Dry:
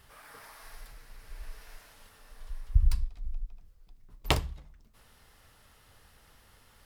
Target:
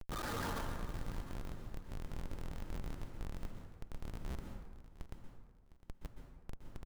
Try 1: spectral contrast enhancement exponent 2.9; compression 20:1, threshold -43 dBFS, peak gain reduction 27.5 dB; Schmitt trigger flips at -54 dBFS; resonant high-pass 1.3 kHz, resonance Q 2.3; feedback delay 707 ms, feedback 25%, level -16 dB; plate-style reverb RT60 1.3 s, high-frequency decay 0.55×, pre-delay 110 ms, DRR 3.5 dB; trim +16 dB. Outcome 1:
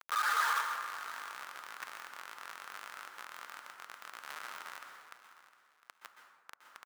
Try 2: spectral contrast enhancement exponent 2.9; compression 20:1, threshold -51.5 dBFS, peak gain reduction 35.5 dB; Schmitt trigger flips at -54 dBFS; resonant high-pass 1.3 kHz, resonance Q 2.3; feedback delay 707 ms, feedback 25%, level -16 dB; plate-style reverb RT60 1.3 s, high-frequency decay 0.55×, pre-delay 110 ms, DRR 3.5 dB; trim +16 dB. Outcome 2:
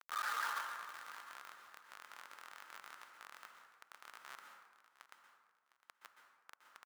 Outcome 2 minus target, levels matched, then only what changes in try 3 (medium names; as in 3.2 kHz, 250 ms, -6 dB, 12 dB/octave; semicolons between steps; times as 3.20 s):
1 kHz band +3.5 dB
remove: resonant high-pass 1.3 kHz, resonance Q 2.3